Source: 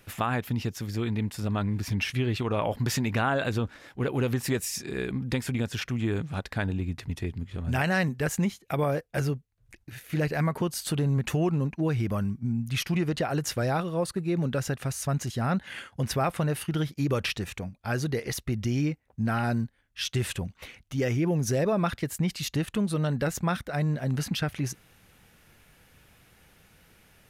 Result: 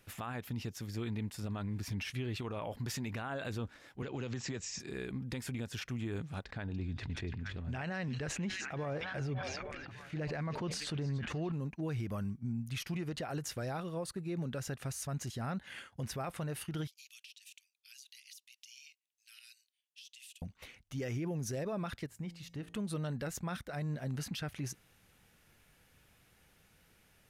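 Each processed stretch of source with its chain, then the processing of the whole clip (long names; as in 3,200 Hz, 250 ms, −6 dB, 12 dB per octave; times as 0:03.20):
0:04.02–0:04.80: Butterworth low-pass 7,600 Hz 96 dB per octave + multiband upward and downward compressor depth 70%
0:06.44–0:11.52: high-frequency loss of the air 110 metres + echo through a band-pass that steps 289 ms, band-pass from 4,900 Hz, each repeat −0.7 octaves, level −8.5 dB + level that may fall only so fast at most 26 dB per second
0:16.87–0:20.42: Chebyshev high-pass filter 2,700 Hz, order 4 + downward compressor 20 to 1, threshold −42 dBFS
0:22.06–0:22.74: high-shelf EQ 3,600 Hz −10 dB + tuned comb filter 170 Hz, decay 0.81 s, harmonics odd, mix 50% + hum removal 56.48 Hz, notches 17
whole clip: parametric band 7,000 Hz +2 dB 1.8 octaves; brickwall limiter −22 dBFS; level −8.5 dB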